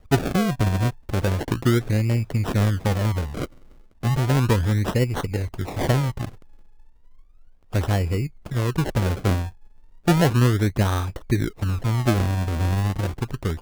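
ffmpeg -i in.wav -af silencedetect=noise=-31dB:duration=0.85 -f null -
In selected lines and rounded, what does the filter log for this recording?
silence_start: 6.29
silence_end: 7.73 | silence_duration: 1.44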